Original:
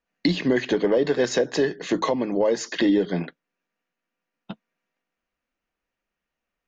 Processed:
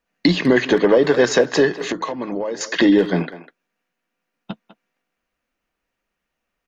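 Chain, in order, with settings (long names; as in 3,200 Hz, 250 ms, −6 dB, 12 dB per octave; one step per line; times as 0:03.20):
dynamic equaliser 1,200 Hz, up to +6 dB, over −40 dBFS, Q 1.3
0:01.78–0:02.61: downward compressor 10 to 1, threshold −27 dBFS, peak gain reduction 12.5 dB
far-end echo of a speakerphone 200 ms, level −13 dB
level +5.5 dB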